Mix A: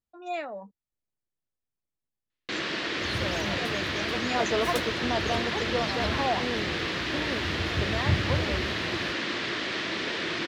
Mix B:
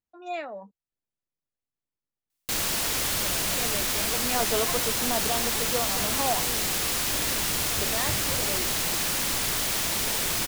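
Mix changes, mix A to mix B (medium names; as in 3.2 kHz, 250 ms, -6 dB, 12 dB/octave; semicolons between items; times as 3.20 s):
first sound: remove cabinet simulation 200–4000 Hz, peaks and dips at 340 Hz +9 dB, 830 Hz -7 dB, 1.8 kHz +5 dB; second sound -7.5 dB; master: add bass shelf 130 Hz -5 dB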